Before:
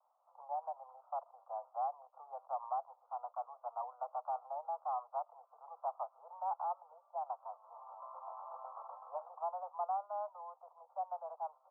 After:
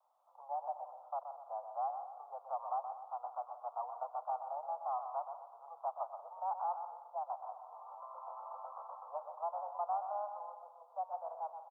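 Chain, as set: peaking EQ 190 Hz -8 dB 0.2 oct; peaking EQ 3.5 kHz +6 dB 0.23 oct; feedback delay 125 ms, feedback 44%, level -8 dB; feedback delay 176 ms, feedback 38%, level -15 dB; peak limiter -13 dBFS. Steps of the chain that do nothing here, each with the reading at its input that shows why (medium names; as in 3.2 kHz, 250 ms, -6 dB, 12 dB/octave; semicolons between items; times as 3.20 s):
peaking EQ 190 Hz: input has nothing below 480 Hz; peaking EQ 3.5 kHz: input has nothing above 1.4 kHz; peak limiter -13 dBFS: peak at its input -26.0 dBFS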